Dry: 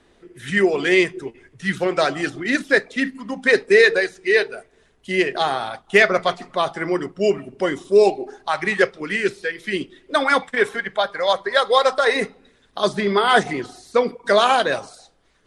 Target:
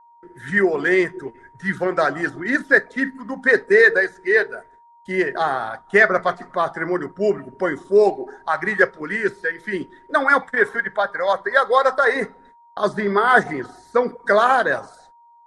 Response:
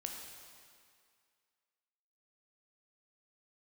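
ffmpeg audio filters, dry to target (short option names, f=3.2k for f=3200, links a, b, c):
-af "agate=range=-36dB:threshold=-51dB:ratio=16:detection=peak,aeval=exprs='val(0)+0.00355*sin(2*PI*940*n/s)':c=same,highshelf=f=2.1k:t=q:w=3:g=-6.5,volume=-1dB"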